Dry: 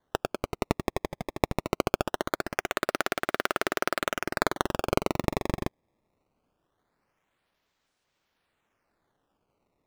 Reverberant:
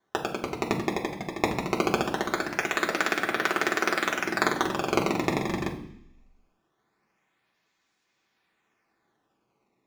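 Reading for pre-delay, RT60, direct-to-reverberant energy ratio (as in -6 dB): 3 ms, 0.65 s, -1.0 dB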